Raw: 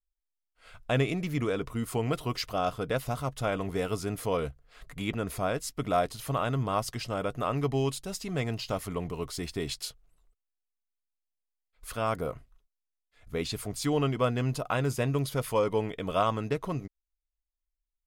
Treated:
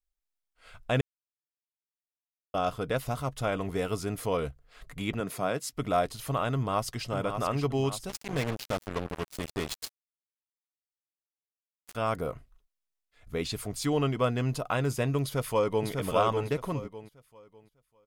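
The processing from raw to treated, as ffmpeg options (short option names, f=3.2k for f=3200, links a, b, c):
-filter_complex "[0:a]asettb=1/sr,asplit=3[a][b][c];[a]atrim=end=5.204[d];[b]atrim=start=5.2:end=5.73,asetpts=PTS-STARTPTS,afade=t=in:d=0.004:c=qsin,afade=t=out:st=0.526:d=0.004:c=qsin,highpass=f=120:w=0.5412,highpass=f=120:w=1.3066[e];[c]atrim=start=5.726[f];[d][e]acrossfade=d=0.004:c1=hsin:c2=qsin[g];[g][f]acrossfade=d=0.004:c1=qsin:c2=hsin,asplit=2[h][i];[i]afade=t=in:st=6.54:d=0.01,afade=t=out:st=7.08:d=0.01,aecho=0:1:580|1160|1740|2320|2900|3480|4060:0.421697|0.231933|0.127563|0.0701598|0.0385879|0.0212233|0.0116728[j];[h][j]amix=inputs=2:normalize=0,asettb=1/sr,asplit=3[k][l][m];[k]atrim=end=8.094[n];[l]atrim=start=8.09:end=11.95,asetpts=PTS-STARTPTS,afade=t=in:d=0.004:c=qsin,afade=t=out:st=3.856:d=0.004:c=qsin,acrusher=bits=4:mix=0:aa=0.5[o];[m]atrim=start=11.946[p];[n][o]acrossfade=d=0.004:c1=hsin:c2=qsin[q];[q][p]acrossfade=d=0.004:c1=qsin:c2=hsin,asplit=2[r][s];[s]afade=t=in:st=15.22:d=0.01,afade=t=out:st=15.88:d=0.01,aecho=0:1:600|1200|1800|2400:0.668344|0.167086|0.0417715|0.0104429[t];[r][t]amix=inputs=2:normalize=0,asplit=3[u][v][w];[u]atrim=end=1.01,asetpts=PTS-STARTPTS,afade=t=out:st=1.006:d=0.004:c=hsin[x];[v]atrim=start=1.01:end=2.54,asetpts=PTS-STARTPTS,volume=0[y];[w]atrim=start=2.54,asetpts=PTS-STARTPTS,afade=t=in:d=0.004:c=hsin[z];[x][y][z]concat=n=3:v=0:a=1"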